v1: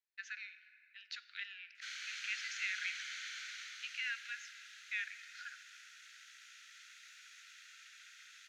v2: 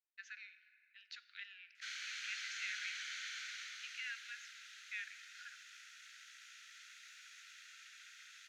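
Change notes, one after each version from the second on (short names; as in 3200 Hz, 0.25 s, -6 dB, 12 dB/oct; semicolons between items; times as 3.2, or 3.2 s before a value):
speech -5.5 dB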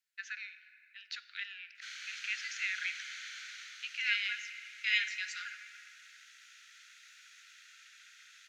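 first voice +9.0 dB; second voice: unmuted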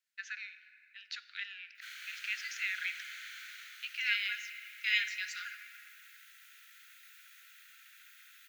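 background: remove synth low-pass 6000 Hz, resonance Q 2.1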